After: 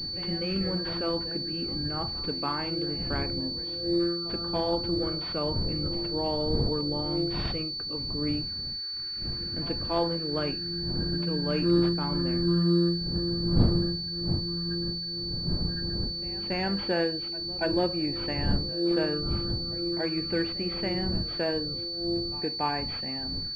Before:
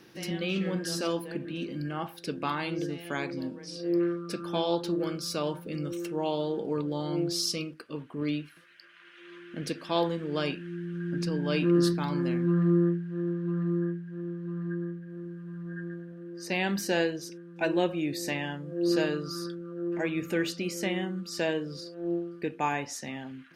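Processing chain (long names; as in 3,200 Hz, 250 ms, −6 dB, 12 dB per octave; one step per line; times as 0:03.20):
wind on the microphone 150 Hz −36 dBFS
echo ahead of the sound 283 ms −19.5 dB
switching amplifier with a slow clock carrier 4,500 Hz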